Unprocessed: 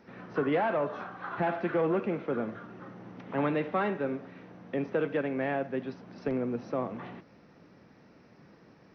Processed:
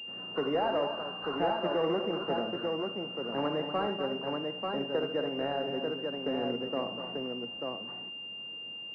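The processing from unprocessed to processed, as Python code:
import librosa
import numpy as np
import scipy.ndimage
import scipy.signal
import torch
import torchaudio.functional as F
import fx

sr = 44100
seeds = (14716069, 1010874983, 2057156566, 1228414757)

y = fx.low_shelf(x, sr, hz=230.0, db=-11.0)
y = fx.echo_multitap(y, sr, ms=(73, 245, 890), db=(-9.0, -9.5, -3.5))
y = fx.pwm(y, sr, carrier_hz=2800.0)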